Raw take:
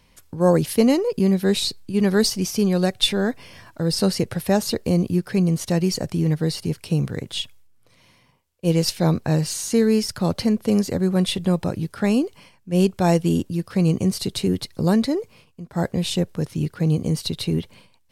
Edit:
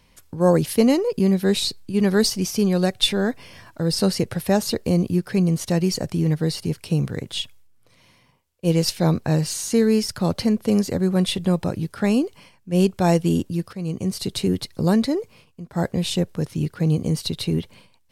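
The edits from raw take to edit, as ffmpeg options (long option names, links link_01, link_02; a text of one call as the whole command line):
ffmpeg -i in.wav -filter_complex "[0:a]asplit=2[link_01][link_02];[link_01]atrim=end=13.73,asetpts=PTS-STARTPTS,afade=type=out:start_time=13.726:duration=0.004:curve=hsin:silence=0.188365[link_03];[link_02]atrim=start=13.73,asetpts=PTS-STARTPTS,afade=type=in:duration=0.61:silence=0.188365[link_04];[link_03][link_04]concat=n=2:v=0:a=1" out.wav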